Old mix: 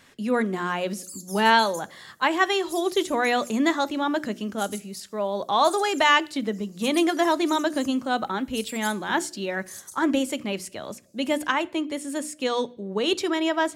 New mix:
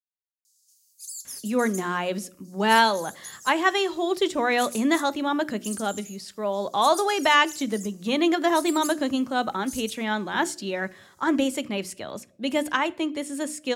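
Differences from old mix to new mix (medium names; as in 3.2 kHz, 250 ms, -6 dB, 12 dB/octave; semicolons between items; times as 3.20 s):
speech: entry +1.25 s; background +3.0 dB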